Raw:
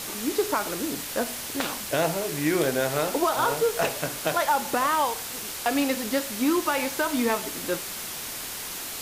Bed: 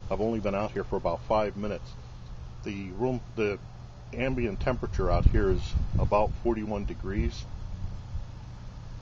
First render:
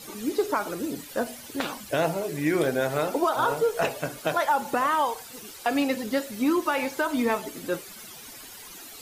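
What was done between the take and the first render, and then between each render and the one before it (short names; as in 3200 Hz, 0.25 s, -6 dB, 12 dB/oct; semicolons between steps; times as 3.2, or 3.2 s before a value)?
denoiser 13 dB, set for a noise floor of -35 dBFS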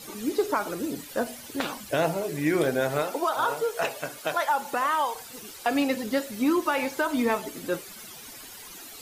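3.02–5.15 low shelf 360 Hz -10.5 dB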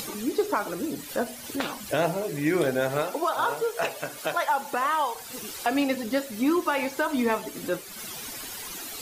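upward compressor, threshold -29 dBFS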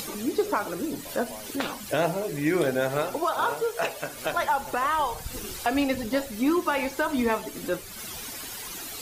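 add bed -17.5 dB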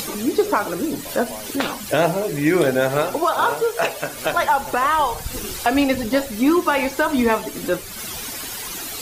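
gain +7 dB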